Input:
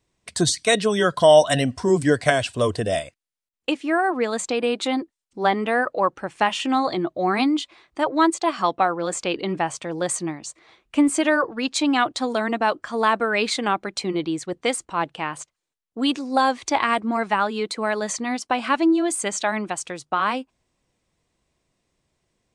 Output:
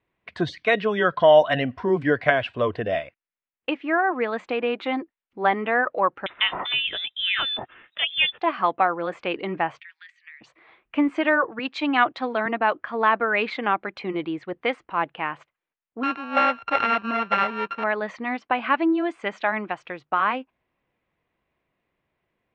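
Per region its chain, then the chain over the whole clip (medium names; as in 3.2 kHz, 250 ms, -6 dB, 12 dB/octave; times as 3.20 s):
6.26–8.41 s: frequency inversion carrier 3.8 kHz + three bands compressed up and down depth 40%
9.80–10.41 s: elliptic high-pass 1.8 kHz, stop band 70 dB + compression 5:1, threshold -38 dBFS + distance through air 54 m
11.59–12.46 s: high-pass 55 Hz + treble shelf 3.8 kHz +6 dB + three bands expanded up and down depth 40%
16.03–17.84 s: sorted samples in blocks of 32 samples + low-pass 7.6 kHz + peaking EQ 320 Hz -7 dB 0.37 oct
whole clip: low-pass 2.5 kHz 24 dB/octave; tilt EQ +2 dB/octave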